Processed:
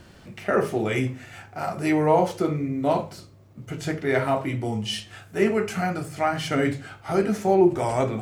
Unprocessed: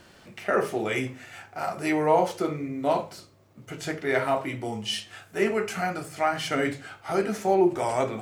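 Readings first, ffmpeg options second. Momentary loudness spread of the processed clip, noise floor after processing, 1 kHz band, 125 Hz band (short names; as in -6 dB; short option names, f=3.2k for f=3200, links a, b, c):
14 LU, -50 dBFS, +1.0 dB, +8.0 dB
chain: -af "lowshelf=f=230:g=11.5"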